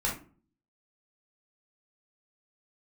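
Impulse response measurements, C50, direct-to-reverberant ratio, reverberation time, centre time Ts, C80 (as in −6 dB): 6.5 dB, −4.0 dB, 0.40 s, 28 ms, 14.0 dB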